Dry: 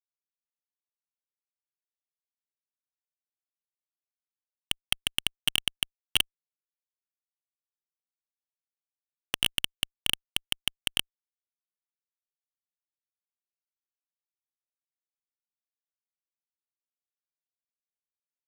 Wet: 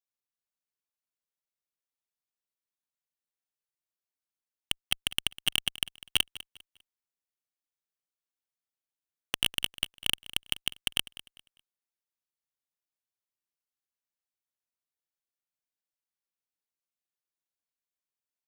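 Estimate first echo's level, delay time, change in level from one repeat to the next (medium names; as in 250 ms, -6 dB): -17.5 dB, 200 ms, -10.5 dB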